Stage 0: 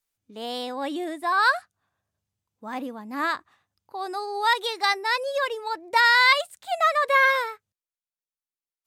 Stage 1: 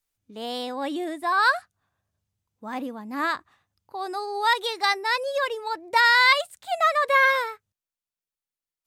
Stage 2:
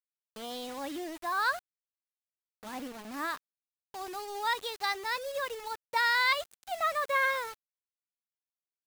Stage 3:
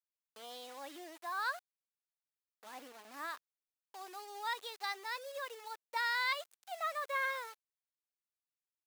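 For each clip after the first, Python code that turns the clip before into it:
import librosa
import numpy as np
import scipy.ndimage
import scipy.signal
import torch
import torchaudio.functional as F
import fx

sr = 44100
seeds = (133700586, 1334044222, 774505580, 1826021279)

y1 = fx.low_shelf(x, sr, hz=110.0, db=7.5)
y2 = fx.quant_dither(y1, sr, seeds[0], bits=6, dither='none')
y2 = y2 * librosa.db_to_amplitude(-9.0)
y3 = scipy.signal.sosfilt(scipy.signal.butter(2, 450.0, 'highpass', fs=sr, output='sos'), y2)
y3 = y3 * librosa.db_to_amplitude(-7.5)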